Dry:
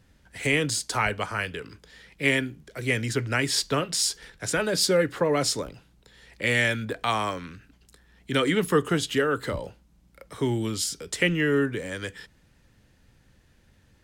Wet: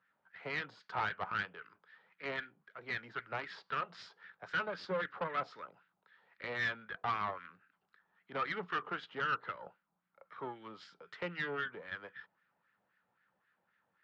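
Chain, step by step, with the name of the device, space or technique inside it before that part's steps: wah-wah guitar rig (wah 3.8 Hz 760–1700 Hz, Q 2.7; tube stage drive 30 dB, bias 0.75; speaker cabinet 100–4500 Hz, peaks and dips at 180 Hz +8 dB, 280 Hz -3 dB, 1300 Hz +5 dB)

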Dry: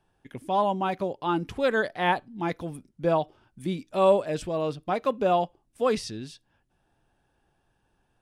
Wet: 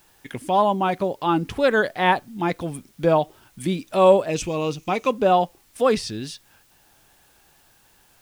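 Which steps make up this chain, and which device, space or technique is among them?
noise-reduction cassette on a plain deck (mismatched tape noise reduction encoder only; wow and flutter; white noise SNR 37 dB); 4.3–5.12 thirty-one-band EQ 630 Hz -7 dB, 1600 Hz -8 dB, 2500 Hz +9 dB, 6300 Hz +11 dB; gain +5.5 dB

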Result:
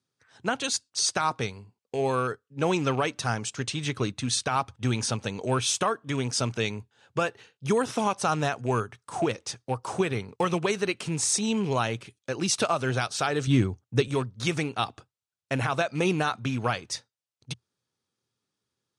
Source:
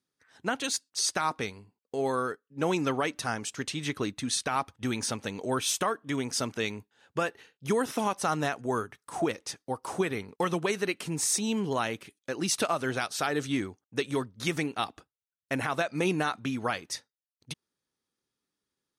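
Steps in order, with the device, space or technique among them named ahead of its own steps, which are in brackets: car door speaker with a rattle (rattling part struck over -37 dBFS, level -37 dBFS; speaker cabinet 84–9200 Hz, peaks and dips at 84 Hz +7 dB, 120 Hz +9 dB, 290 Hz -4 dB, 1900 Hz -4 dB); 13.47–14.08 low shelf 300 Hz +10.5 dB; gain +3 dB

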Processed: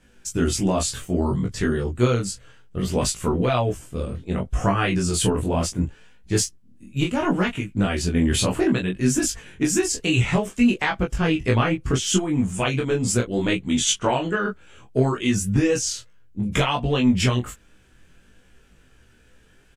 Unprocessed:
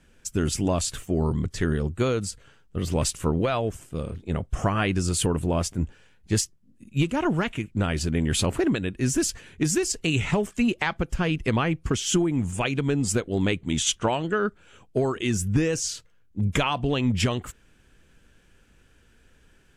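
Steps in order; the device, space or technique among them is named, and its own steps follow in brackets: double-tracked vocal (doubler 16 ms -3.5 dB; chorus 0.65 Hz, delay 20 ms, depth 6 ms); 9.23–9.9 bell 4400 Hz -6 dB 0.26 oct; gain +4.5 dB

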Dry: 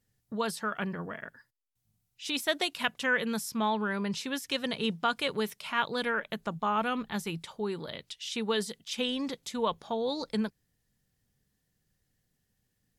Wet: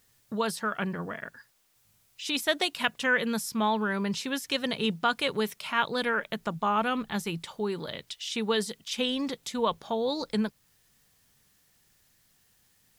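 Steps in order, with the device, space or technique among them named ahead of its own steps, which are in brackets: noise-reduction cassette on a plain deck (mismatched tape noise reduction encoder only; wow and flutter 21 cents; white noise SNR 38 dB); gain +2.5 dB

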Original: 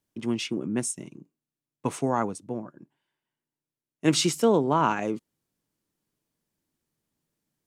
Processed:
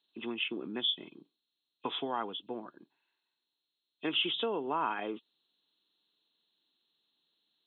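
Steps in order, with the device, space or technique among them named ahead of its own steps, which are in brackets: hearing aid with frequency lowering (nonlinear frequency compression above 2500 Hz 4:1; compressor 3:1, threshold -28 dBFS, peak gain reduction 9.5 dB; speaker cabinet 380–6600 Hz, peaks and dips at 570 Hz -7 dB, 2100 Hz -3 dB, 4900 Hz +8 dB)

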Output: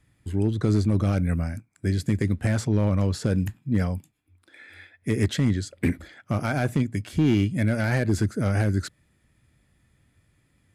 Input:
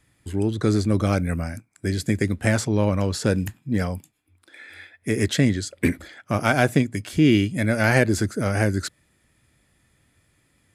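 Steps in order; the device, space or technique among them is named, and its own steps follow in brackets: tone controls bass +6 dB, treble -3 dB; limiter into clipper (limiter -7.5 dBFS, peak gain reduction 5.5 dB; hard clip -10 dBFS, distortion -24 dB); gain -4 dB

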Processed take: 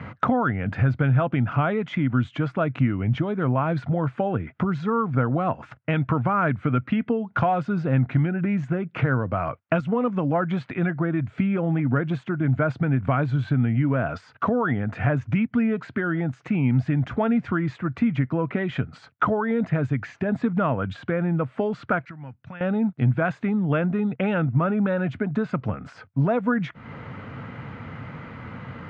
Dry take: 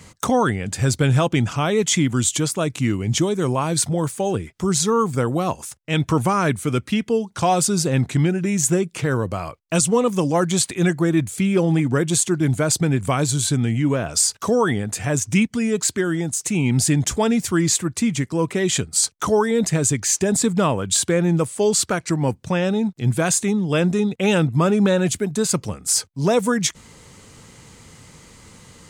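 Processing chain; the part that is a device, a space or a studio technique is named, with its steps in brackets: bass amplifier (compressor 6:1, threshold -30 dBFS, peak gain reduction 15.5 dB; speaker cabinet 87–2400 Hz, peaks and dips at 94 Hz +4 dB, 130 Hz +6 dB, 250 Hz +5 dB, 380 Hz -5 dB, 670 Hz +5 dB, 1400 Hz +8 dB); 22.05–22.61 passive tone stack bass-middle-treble 5-5-5; gain +7.5 dB

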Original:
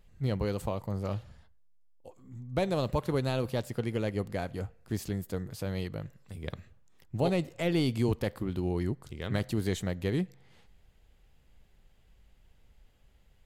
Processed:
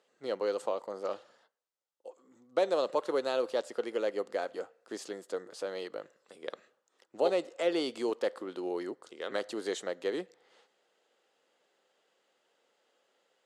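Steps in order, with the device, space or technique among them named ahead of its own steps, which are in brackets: phone speaker on a table (speaker cabinet 340–8800 Hz, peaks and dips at 520 Hz +5 dB, 1300 Hz +4 dB, 2300 Hz -5 dB)

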